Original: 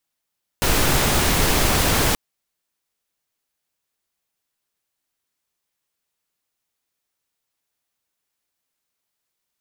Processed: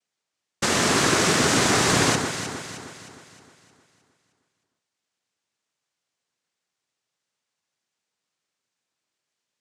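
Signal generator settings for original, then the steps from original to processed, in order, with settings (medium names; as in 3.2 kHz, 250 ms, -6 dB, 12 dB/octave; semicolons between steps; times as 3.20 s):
noise pink, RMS -18 dBFS 1.53 s
noise-vocoded speech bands 3; on a send: echo whose repeats swap between lows and highs 155 ms, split 1.7 kHz, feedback 68%, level -5.5 dB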